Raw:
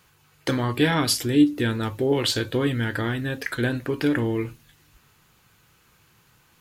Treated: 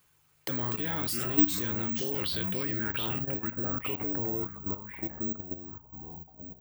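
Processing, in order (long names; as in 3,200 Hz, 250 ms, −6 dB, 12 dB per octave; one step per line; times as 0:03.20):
loose part that buzzes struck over −23 dBFS, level −28 dBFS
low-pass filter sweep 9,500 Hz → 810 Hz, 0:01.89–0:03.18
delay with pitch and tempo change per echo 123 ms, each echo −4 semitones, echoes 3, each echo −6 dB
bad sample-rate conversion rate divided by 2×, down none, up zero stuff
output level in coarse steps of 12 dB
level −7.5 dB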